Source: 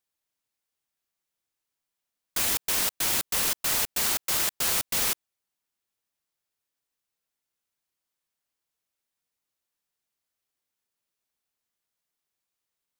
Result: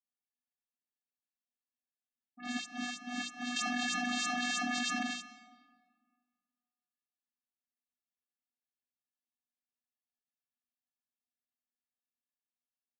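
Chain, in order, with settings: gate -22 dBFS, range -27 dB; hum notches 60/120/180/240/300 Hz; comb 3.5 ms, depth 53%; small resonant body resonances 1.9/3.5 kHz, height 17 dB, ringing for 50 ms; phase dispersion highs, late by 96 ms, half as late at 2.7 kHz; vocoder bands 16, square 245 Hz; reverberation RT60 1.8 s, pre-delay 96 ms, DRR 13 dB; 3.56–5.03 s: level flattener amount 100%; trim +5.5 dB

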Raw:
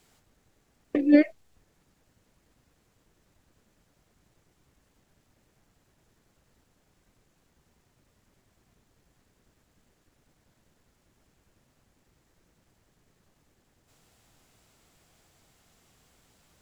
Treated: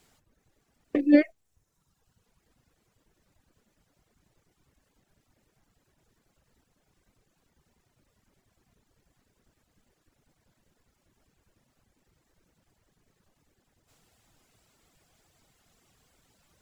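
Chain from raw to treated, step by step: reverb removal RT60 1.2 s

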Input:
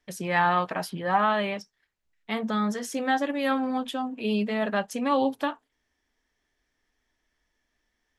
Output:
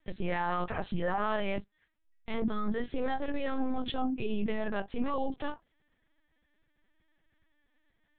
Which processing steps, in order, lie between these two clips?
bass shelf 290 Hz +7.5 dB; compression, threshold -23 dBFS, peak gain reduction 7 dB; peak limiter -23 dBFS, peak gain reduction 8.5 dB; LPC vocoder at 8 kHz pitch kept

